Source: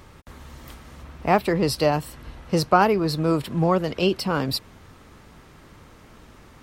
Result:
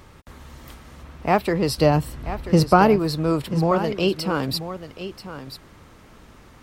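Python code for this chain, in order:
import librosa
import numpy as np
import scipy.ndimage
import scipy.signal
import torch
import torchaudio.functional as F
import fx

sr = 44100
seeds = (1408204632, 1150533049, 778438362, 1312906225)

y = fx.low_shelf(x, sr, hz=330.0, db=9.0, at=(1.78, 2.96))
y = y + 10.0 ** (-12.0 / 20.0) * np.pad(y, (int(986 * sr / 1000.0), 0))[:len(y)]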